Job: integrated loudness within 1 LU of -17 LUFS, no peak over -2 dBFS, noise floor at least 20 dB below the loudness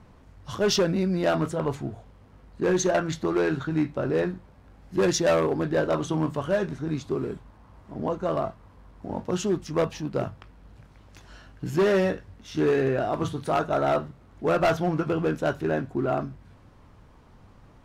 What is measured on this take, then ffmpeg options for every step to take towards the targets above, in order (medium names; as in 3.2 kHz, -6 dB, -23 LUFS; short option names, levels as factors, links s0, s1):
loudness -26.5 LUFS; peak level -16.0 dBFS; loudness target -17.0 LUFS
-> -af "volume=2.99"